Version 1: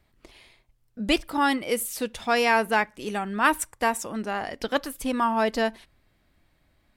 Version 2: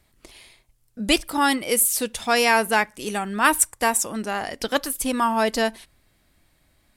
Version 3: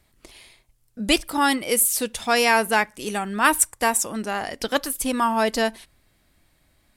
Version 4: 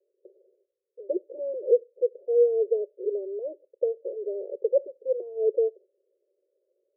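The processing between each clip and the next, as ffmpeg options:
-af "equalizer=f=10000:w=0.51:g=11,volume=1.26"
-af anull
-af "asuperpass=centerf=460:order=12:qfactor=2.2,volume=1.78"

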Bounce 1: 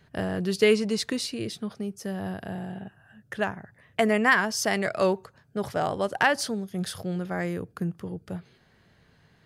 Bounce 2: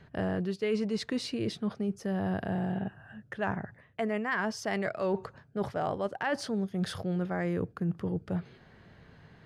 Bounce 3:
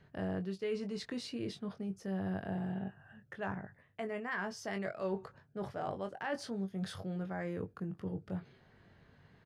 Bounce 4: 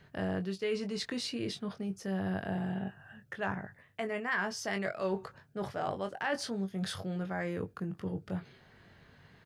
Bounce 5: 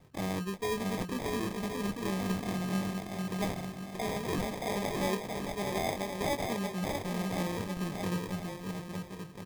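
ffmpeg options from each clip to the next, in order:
-af "areverse,acompressor=threshold=0.02:ratio=6,areverse,aemphasis=mode=reproduction:type=75kf,volume=2"
-filter_complex "[0:a]asplit=2[s0][s1];[s1]adelay=21,volume=0.447[s2];[s0][s2]amix=inputs=2:normalize=0,volume=0.398"
-af "tiltshelf=f=1300:g=-3,volume=1.88"
-af "aecho=1:1:630|1071|1380|1596|1747:0.631|0.398|0.251|0.158|0.1,acrusher=samples=31:mix=1:aa=0.000001"

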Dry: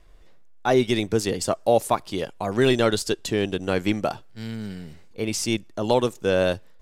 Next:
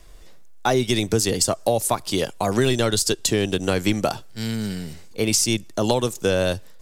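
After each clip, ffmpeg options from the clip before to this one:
-filter_complex "[0:a]bass=f=250:g=0,treble=f=4000:g=10,acrossover=split=130[s0][s1];[s1]acompressor=threshold=0.0708:ratio=6[s2];[s0][s2]amix=inputs=2:normalize=0,volume=2"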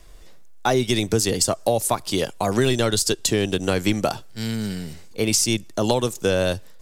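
-af anull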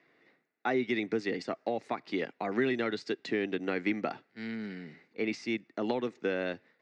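-af "highpass=f=180:w=0.5412,highpass=f=180:w=1.3066,equalizer=f=190:t=q:w=4:g=-4,equalizer=f=270:t=q:w=4:g=3,equalizer=f=580:t=q:w=4:g=-6,equalizer=f=1000:t=q:w=4:g=-6,equalizer=f=2000:t=q:w=4:g=9,equalizer=f=3200:t=q:w=4:g=-10,lowpass=f=3400:w=0.5412,lowpass=f=3400:w=1.3066,volume=0.376"

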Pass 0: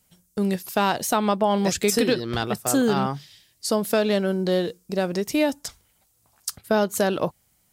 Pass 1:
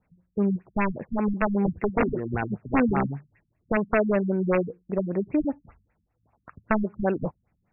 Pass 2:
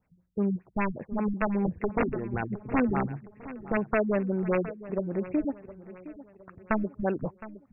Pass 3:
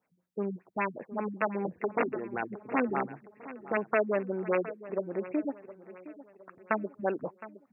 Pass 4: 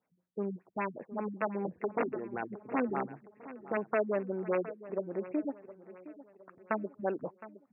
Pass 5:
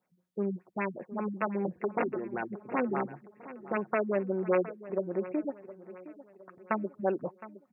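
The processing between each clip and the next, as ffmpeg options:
-af "aeval=exprs='(mod(4.47*val(0)+1,2)-1)/4.47':c=same,afftfilt=real='re*lt(b*sr/1024,230*pow(2800/230,0.5+0.5*sin(2*PI*5.1*pts/sr)))':imag='im*lt(b*sr/1024,230*pow(2800/230,0.5+0.5*sin(2*PI*5.1*pts/sr)))':win_size=1024:overlap=0.75"
-af "aecho=1:1:714|1428|2142|2856:0.158|0.0697|0.0307|0.0135,volume=0.668"
-af "highpass=320"
-af "highshelf=f=2100:g=-9,volume=0.794"
-af "aecho=1:1:5.5:0.35,volume=1.26"

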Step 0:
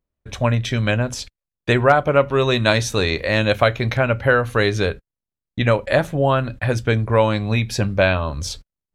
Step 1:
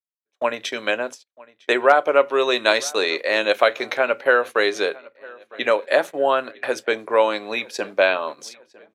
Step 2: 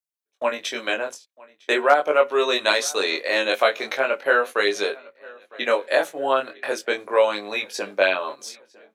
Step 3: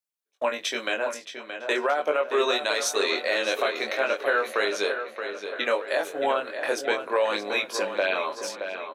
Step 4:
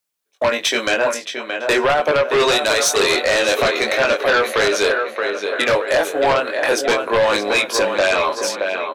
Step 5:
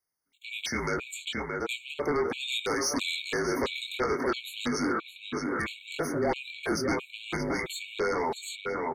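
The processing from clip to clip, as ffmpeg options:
-filter_complex "[0:a]agate=range=0.00794:threshold=0.0562:ratio=16:detection=peak,highpass=f=340:w=0.5412,highpass=f=340:w=1.3066,asplit=2[s0][s1];[s1]adelay=955,lowpass=f=4200:p=1,volume=0.0708,asplit=2[s2][s3];[s3]adelay=955,lowpass=f=4200:p=1,volume=0.49,asplit=2[s4][s5];[s5]adelay=955,lowpass=f=4200:p=1,volume=0.49[s6];[s0][s2][s4][s6]amix=inputs=4:normalize=0"
-af "highpass=f=150:p=1,highshelf=f=5200:g=6,flanger=delay=19.5:depth=3.1:speed=0.4,volume=1.12"
-filter_complex "[0:a]lowshelf=f=140:g=-6,alimiter=limit=0.2:level=0:latency=1:release=157,asplit=2[s0][s1];[s1]adelay=623,lowpass=f=3700:p=1,volume=0.398,asplit=2[s2][s3];[s3]adelay=623,lowpass=f=3700:p=1,volume=0.49,asplit=2[s4][s5];[s5]adelay=623,lowpass=f=3700:p=1,volume=0.49,asplit=2[s6][s7];[s7]adelay=623,lowpass=f=3700:p=1,volume=0.49,asplit=2[s8][s9];[s9]adelay=623,lowpass=f=3700:p=1,volume=0.49,asplit=2[s10][s11];[s11]adelay=623,lowpass=f=3700:p=1,volume=0.49[s12];[s2][s4][s6][s8][s10][s12]amix=inputs=6:normalize=0[s13];[s0][s13]amix=inputs=2:normalize=0"
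-af "aeval=exprs='0.282*sin(PI/2*2.51*val(0)/0.282)':c=same"
-af "alimiter=limit=0.126:level=0:latency=1:release=27,afreqshift=-160,afftfilt=real='re*gt(sin(2*PI*1.5*pts/sr)*(1-2*mod(floor(b*sr/1024/2200),2)),0)':imag='im*gt(sin(2*PI*1.5*pts/sr)*(1-2*mod(floor(b*sr/1024/2200),2)),0)':win_size=1024:overlap=0.75,volume=0.631"

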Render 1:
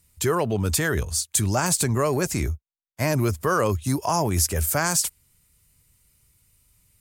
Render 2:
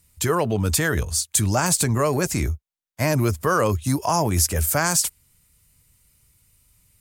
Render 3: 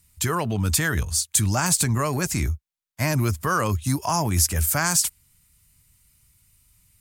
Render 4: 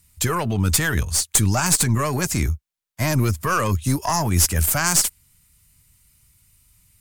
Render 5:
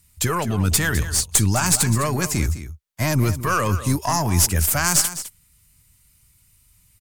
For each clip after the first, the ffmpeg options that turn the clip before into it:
-af "bandreject=f=390:w=12,volume=1.26"
-af "equalizer=f=480:w=1.2:g=-8"
-af "aeval=exprs='0.596*(cos(1*acos(clip(val(0)/0.596,-1,1)))-cos(1*PI/2))+0.0841*(cos(4*acos(clip(val(0)/0.596,-1,1)))-cos(4*PI/2))':c=same,volume=1.33"
-af "aecho=1:1:207:0.224"

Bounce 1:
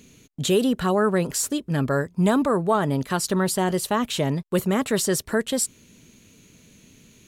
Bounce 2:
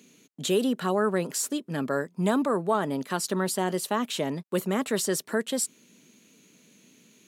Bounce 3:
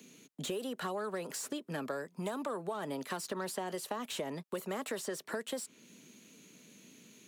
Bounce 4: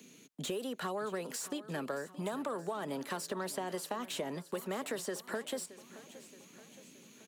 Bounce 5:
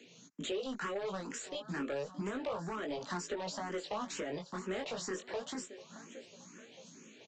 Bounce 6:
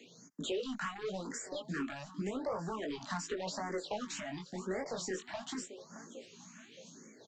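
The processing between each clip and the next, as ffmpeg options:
-af "highpass=f=180:w=0.5412,highpass=f=180:w=1.3066,volume=0.631"
-filter_complex "[0:a]acrossover=split=440|2500|5300[s0][s1][s2][s3];[s0]acompressor=threshold=0.00891:ratio=4[s4];[s1]acompressor=threshold=0.0355:ratio=4[s5];[s2]acompressor=threshold=0.00501:ratio=4[s6];[s3]acompressor=threshold=0.01:ratio=4[s7];[s4][s5][s6][s7]amix=inputs=4:normalize=0,acrossover=split=260|950[s8][s9][s10];[s10]asoftclip=type=tanh:threshold=0.02[s11];[s8][s9][s11]amix=inputs=3:normalize=0,acompressor=threshold=0.02:ratio=6"
-af "aecho=1:1:623|1246|1869|2492|3115:0.15|0.0838|0.0469|0.0263|0.0147"
-filter_complex "[0:a]flanger=delay=17:depth=4.8:speed=0.31,aresample=16000,asoftclip=type=hard:threshold=0.0133,aresample=44100,asplit=2[s0][s1];[s1]afreqshift=2.1[s2];[s0][s2]amix=inputs=2:normalize=1,volume=2.24"
-af "afftfilt=real='re*(1-between(b*sr/1024,400*pow(3300/400,0.5+0.5*sin(2*PI*0.88*pts/sr))/1.41,400*pow(3300/400,0.5+0.5*sin(2*PI*0.88*pts/sr))*1.41))':imag='im*(1-between(b*sr/1024,400*pow(3300/400,0.5+0.5*sin(2*PI*0.88*pts/sr))/1.41,400*pow(3300/400,0.5+0.5*sin(2*PI*0.88*pts/sr))*1.41))':win_size=1024:overlap=0.75,volume=1.12"

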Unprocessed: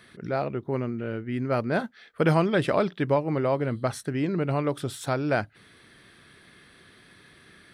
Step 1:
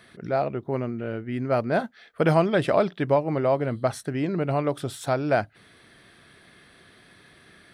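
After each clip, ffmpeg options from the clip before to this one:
-af "equalizer=f=680:w=2.7:g=5.5"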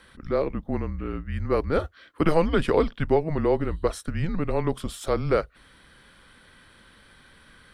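-af "afreqshift=-160"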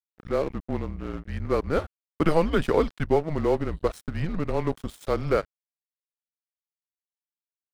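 -af "aeval=exprs='sgn(val(0))*max(abs(val(0))-0.0126,0)':c=same"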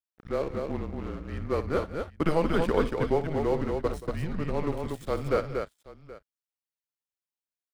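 -af "aecho=1:1:60|178|236|776:0.211|0.141|0.596|0.119,volume=0.631"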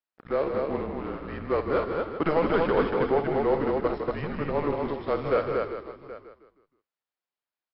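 -filter_complex "[0:a]asplit=2[s0][s1];[s1]highpass=f=720:p=1,volume=7.08,asoftclip=type=tanh:threshold=0.335[s2];[s0][s2]amix=inputs=2:normalize=0,lowpass=f=1200:p=1,volume=0.501,asplit=5[s3][s4][s5][s6][s7];[s4]adelay=157,afreqshift=-33,volume=0.422[s8];[s5]adelay=314,afreqshift=-66,volume=0.16[s9];[s6]adelay=471,afreqshift=-99,volume=0.061[s10];[s7]adelay=628,afreqshift=-132,volume=0.0232[s11];[s3][s8][s9][s10][s11]amix=inputs=5:normalize=0,volume=0.841" -ar 12000 -c:a libmp3lame -b:a 40k

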